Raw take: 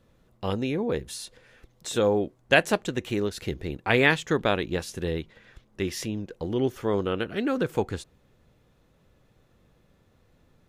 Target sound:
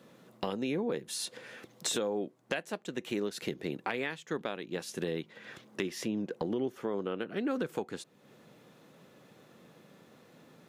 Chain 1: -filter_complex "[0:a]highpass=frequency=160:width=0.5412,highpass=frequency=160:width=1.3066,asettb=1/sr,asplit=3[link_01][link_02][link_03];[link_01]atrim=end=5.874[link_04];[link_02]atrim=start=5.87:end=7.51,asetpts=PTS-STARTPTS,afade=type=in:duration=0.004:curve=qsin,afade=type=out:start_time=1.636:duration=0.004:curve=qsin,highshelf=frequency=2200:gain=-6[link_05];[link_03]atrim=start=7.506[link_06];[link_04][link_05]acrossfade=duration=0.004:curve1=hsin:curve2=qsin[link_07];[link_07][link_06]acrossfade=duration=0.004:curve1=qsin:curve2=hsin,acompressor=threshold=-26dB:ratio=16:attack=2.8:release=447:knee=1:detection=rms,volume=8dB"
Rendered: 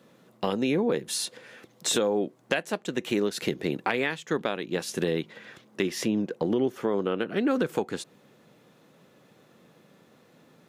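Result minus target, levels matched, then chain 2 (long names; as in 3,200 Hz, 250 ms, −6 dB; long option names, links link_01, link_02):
downward compressor: peak gain reduction −7.5 dB
-filter_complex "[0:a]highpass=frequency=160:width=0.5412,highpass=frequency=160:width=1.3066,asettb=1/sr,asplit=3[link_01][link_02][link_03];[link_01]atrim=end=5.874[link_04];[link_02]atrim=start=5.87:end=7.51,asetpts=PTS-STARTPTS,afade=type=in:duration=0.004:curve=qsin,afade=type=out:start_time=1.636:duration=0.004:curve=qsin,highshelf=frequency=2200:gain=-6[link_05];[link_03]atrim=start=7.506[link_06];[link_04][link_05]acrossfade=duration=0.004:curve1=hsin:curve2=qsin[link_07];[link_07][link_06]acrossfade=duration=0.004:curve1=qsin:curve2=hsin,acompressor=threshold=-34dB:ratio=16:attack=2.8:release=447:knee=1:detection=rms,volume=8dB"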